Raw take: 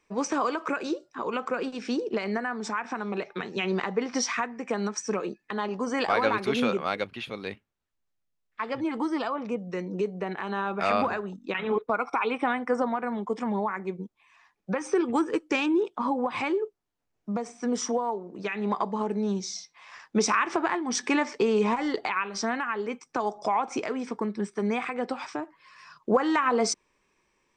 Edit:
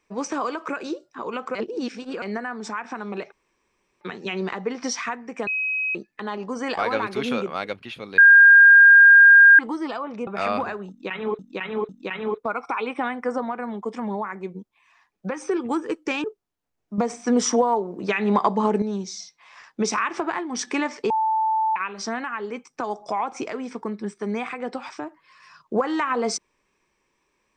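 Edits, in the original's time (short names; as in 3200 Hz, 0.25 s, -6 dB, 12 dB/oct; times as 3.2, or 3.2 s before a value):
1.55–2.22 reverse
3.32 insert room tone 0.69 s
4.78–5.26 bleep 2540 Hz -22 dBFS
7.49–8.9 bleep 1610 Hz -7 dBFS
9.58–10.71 cut
11.33–11.83 loop, 3 plays
15.68–16.6 cut
17.34–19.18 gain +8 dB
21.46–22.12 bleep 880 Hz -18.5 dBFS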